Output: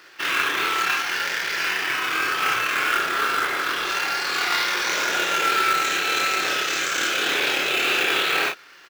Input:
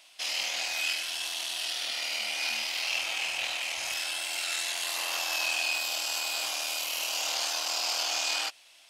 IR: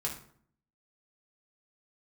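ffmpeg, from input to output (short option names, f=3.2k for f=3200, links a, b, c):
-filter_complex "[0:a]asetrate=23361,aresample=44100,atempo=1.88775,asplit=2[a][b];[b]adelay=34,volume=-4dB[c];[a][c]amix=inputs=2:normalize=0,acrusher=bits=3:mode=log:mix=0:aa=0.000001,volume=8dB"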